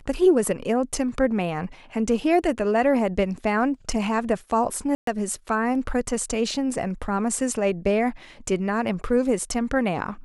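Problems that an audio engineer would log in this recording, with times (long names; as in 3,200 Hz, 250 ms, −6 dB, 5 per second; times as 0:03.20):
0:04.95–0:05.07: drop-out 123 ms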